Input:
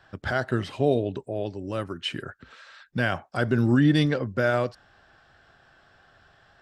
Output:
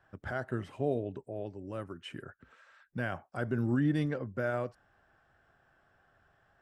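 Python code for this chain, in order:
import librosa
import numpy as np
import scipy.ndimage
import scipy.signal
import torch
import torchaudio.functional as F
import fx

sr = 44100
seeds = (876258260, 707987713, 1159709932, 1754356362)

y = fx.peak_eq(x, sr, hz=4200.0, db=-12.5, octaves=1.1)
y = y * librosa.db_to_amplitude(-9.0)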